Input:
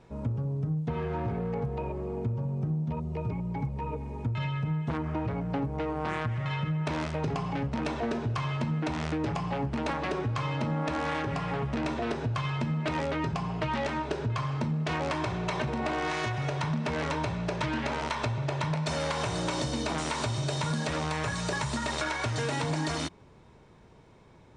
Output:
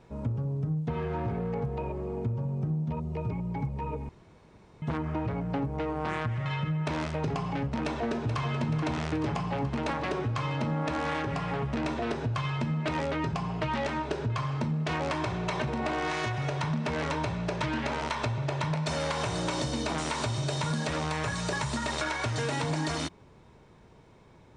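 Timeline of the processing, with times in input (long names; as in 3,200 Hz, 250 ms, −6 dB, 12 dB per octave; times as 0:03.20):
0:04.09–0:04.82: fill with room tone
0:07.83–0:08.56: delay throw 430 ms, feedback 70%, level −9 dB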